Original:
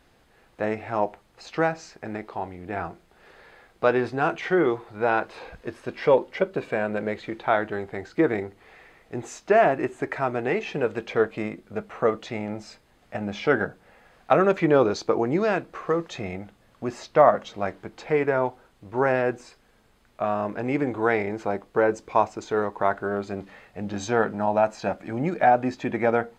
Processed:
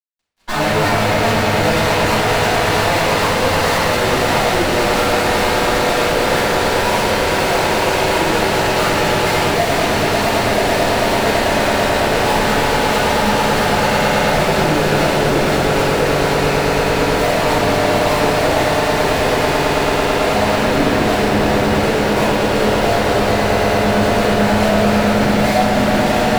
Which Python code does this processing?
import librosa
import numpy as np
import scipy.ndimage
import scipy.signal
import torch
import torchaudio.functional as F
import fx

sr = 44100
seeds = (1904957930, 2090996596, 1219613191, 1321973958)

p1 = fx.lowpass(x, sr, hz=1700.0, slope=6)
p2 = fx.echo_pitch(p1, sr, ms=91, semitones=6, count=3, db_per_echo=-3.0)
p3 = p2 + fx.echo_swell(p2, sr, ms=110, loudest=8, wet_db=-9.0, dry=0)
p4 = fx.fuzz(p3, sr, gain_db=44.0, gate_db=-47.0)
p5 = fx.room_shoebox(p4, sr, seeds[0], volume_m3=370.0, walls='mixed', distance_m=8.0)
y = F.gain(torch.from_numpy(p5), -17.5).numpy()